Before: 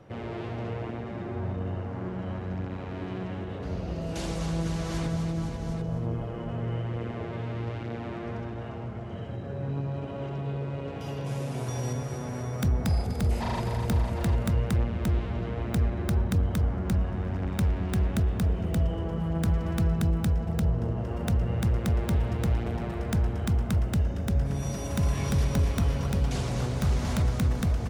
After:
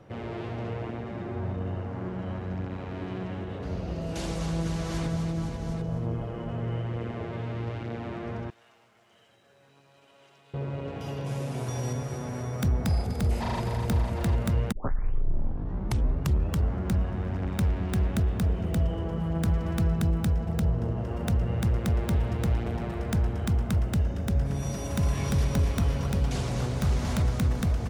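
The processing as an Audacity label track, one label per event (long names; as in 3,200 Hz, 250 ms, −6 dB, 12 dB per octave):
8.500000	10.540000	first difference
14.720000	14.720000	tape start 2.04 s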